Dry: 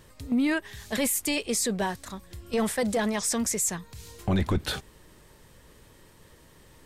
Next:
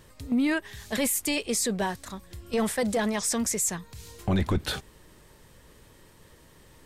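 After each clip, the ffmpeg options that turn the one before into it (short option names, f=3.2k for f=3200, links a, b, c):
-af anull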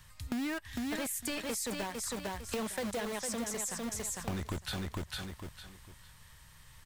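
-filter_complex "[0:a]acrossover=split=170|810|4500[a][b][c][d];[b]acrusher=bits=4:mix=0:aa=0.000001[e];[a][e][c][d]amix=inputs=4:normalize=0,aecho=1:1:453|906|1359:0.501|0.115|0.0265,acompressor=threshold=-33dB:ratio=6,volume=-1dB"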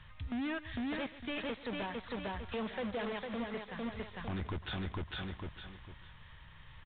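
-af "asoftclip=type=tanh:threshold=-36dB,aresample=8000,aresample=44100,aecho=1:1:137:0.141,volume=3dB"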